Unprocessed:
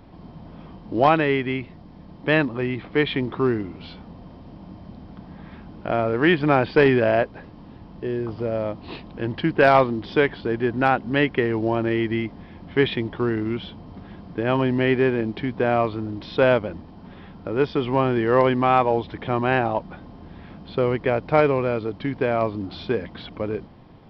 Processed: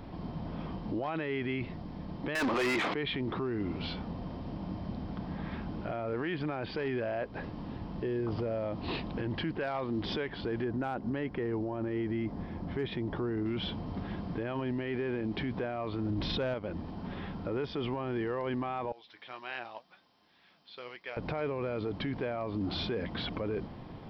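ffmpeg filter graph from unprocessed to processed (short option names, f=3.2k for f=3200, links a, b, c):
-filter_complex "[0:a]asettb=1/sr,asplit=3[a][b][c];[a]atrim=end=2.354[d];[b]atrim=start=2.35:end=2.94,asetpts=PTS-STARTPTS,afade=t=in:d=0.004:c=qsin,afade=t=out:st=0.586:d=0.004:c=qsin,highpass=f=280:p=1,asplit=2[e][f];[f]highpass=f=720:p=1,volume=38dB,asoftclip=type=tanh:threshold=-6dB[g];[e][g]amix=inputs=2:normalize=0,lowpass=f=4.2k:p=1,volume=-6dB[h];[c]atrim=start=2.936[i];[d][h]acrossfade=d=0.004:c1=hsin:c2=qsin[j];[j][i]acrossfade=d=0.004:c1=qsin:c2=hsin,asettb=1/sr,asplit=3[k][l][m];[k]atrim=end=10.644[n];[l]atrim=start=10.64:end=13.46,asetpts=PTS-STARTPTS,afade=t=in:d=0.004:c=qsin,afade=t=out:st=2.816:d=0.004:c=qsin,equalizer=f=2.9k:t=o:w=1.7:g=-8.5,asoftclip=type=hard:threshold=-10dB[o];[m]atrim=start=13.456[p];[n][o]acrossfade=d=0.004:c1=hsin:c2=qsin[q];[q][p]acrossfade=d=0.004:c1=qsin:c2=hsin,asettb=1/sr,asplit=3[r][s][t];[r]atrim=end=16.104[u];[s]atrim=start=16.1:end=16.54,asetpts=PTS-STARTPTS,afade=t=in:d=0.004:c=qsin,afade=t=out:st=0.436:d=0.004:c=qsin,lowshelf=f=140:g=8.5,acontrast=53[v];[t]atrim=start=16.536[w];[u][v]acrossfade=d=0.004:c1=hsin:c2=qsin[x];[x][w]acrossfade=d=0.004:c1=qsin:c2=hsin,asettb=1/sr,asplit=3[y][z][aa];[y]atrim=end=18.924[ab];[z]atrim=start=18.92:end=21.17,asetpts=PTS-STARTPTS,afade=t=in:d=0.004:c=qsin,afade=t=out:st=2.246:d=0.004:c=qsin,aderivative,flanger=delay=5.2:depth=4.4:regen=68:speed=1.9:shape=sinusoidal[ac];[aa]atrim=start=21.166[ad];[ab][ac]acrossfade=d=0.004:c1=hsin:c2=qsin[ae];[ae][ad]acrossfade=d=0.004:c1=qsin:c2=hsin,acompressor=threshold=-26dB:ratio=12,alimiter=level_in=4.5dB:limit=-24dB:level=0:latency=1:release=10,volume=-4.5dB,volume=2.5dB"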